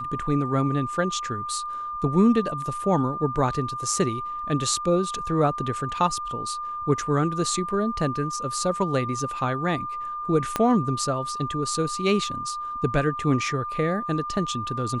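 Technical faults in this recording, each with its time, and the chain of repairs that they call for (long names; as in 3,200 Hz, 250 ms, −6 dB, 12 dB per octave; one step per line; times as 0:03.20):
whistle 1,200 Hz −29 dBFS
0:10.56: click −9 dBFS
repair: click removal
notch filter 1,200 Hz, Q 30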